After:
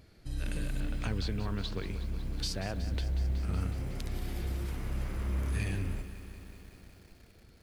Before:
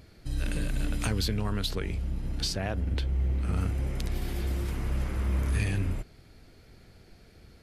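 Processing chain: 0.8–1.85 air absorption 110 m; lo-fi delay 0.185 s, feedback 80%, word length 8-bit, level -13 dB; gain -5 dB

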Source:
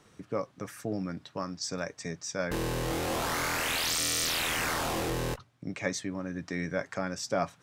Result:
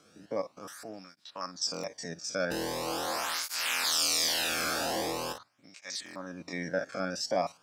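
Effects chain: stepped spectrum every 50 ms; thirty-one-band EQ 125 Hz -6 dB, 400 Hz -7 dB, 2000 Hz -4 dB, 5000 Hz +7 dB; stuck buffer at 1.72/3.72/6.04, samples 1024, times 4; tape flanging out of phase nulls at 0.43 Hz, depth 1.1 ms; gain +4 dB

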